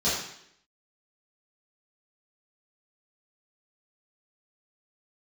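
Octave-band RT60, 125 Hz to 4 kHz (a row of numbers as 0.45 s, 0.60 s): 0.65 s, 0.75 s, 0.75 s, 0.70 s, 0.75 s, 0.70 s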